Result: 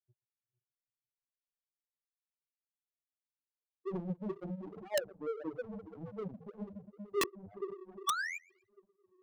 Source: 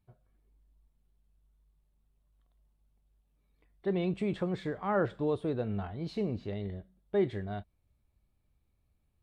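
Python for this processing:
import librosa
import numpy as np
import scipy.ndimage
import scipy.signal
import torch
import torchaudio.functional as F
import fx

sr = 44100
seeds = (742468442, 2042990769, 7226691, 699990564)

p1 = fx.hum_notches(x, sr, base_hz=50, count=9)
p2 = fx.echo_diffused(p1, sr, ms=458, feedback_pct=48, wet_db=-6.0)
p3 = fx.spec_paint(p2, sr, seeds[0], shape='rise', start_s=8.07, length_s=0.31, low_hz=1100.0, high_hz=2500.0, level_db=-25.0)
p4 = fx.echo_feedback(p3, sr, ms=123, feedback_pct=42, wet_db=-15.5)
p5 = (np.mod(10.0 ** (29.0 / 20.0) * p4 + 1.0, 2.0) - 1.0) / 10.0 ** (29.0 / 20.0)
p6 = p4 + F.gain(torch.from_numpy(p5), -9.0).numpy()
p7 = fx.low_shelf(p6, sr, hz=69.0, db=-11.5)
p8 = fx.spec_topn(p7, sr, count=2)
p9 = fx.rotary_switch(p8, sr, hz=7.0, then_hz=1.0, switch_at_s=5.81)
p10 = fx.power_curve(p9, sr, exponent=2.0)
p11 = (np.mod(10.0 ** (30.0 / 20.0) * p10 + 1.0, 2.0) - 1.0) / 10.0 ** (30.0 / 20.0)
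p12 = fx.band_squash(p11, sr, depth_pct=40)
y = F.gain(torch.from_numpy(p12), 9.0).numpy()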